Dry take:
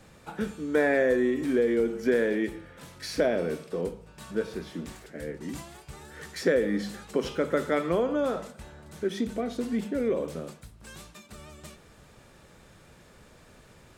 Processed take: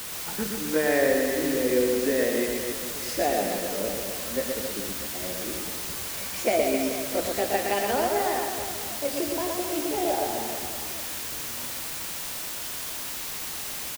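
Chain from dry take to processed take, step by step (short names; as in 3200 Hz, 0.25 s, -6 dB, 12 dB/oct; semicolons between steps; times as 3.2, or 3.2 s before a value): gliding pitch shift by +9.5 st starting unshifted; requantised 6-bit, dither triangular; reverse bouncing-ball echo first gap 0.12 s, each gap 1.2×, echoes 5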